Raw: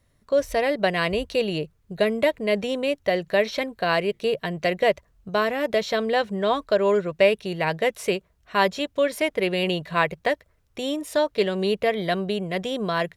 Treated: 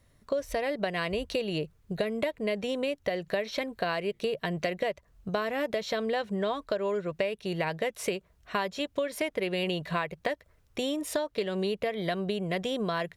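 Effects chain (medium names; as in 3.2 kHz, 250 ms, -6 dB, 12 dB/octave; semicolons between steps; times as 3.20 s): compression 10:1, threshold -28 dBFS, peak gain reduction 15.5 dB; trim +1.5 dB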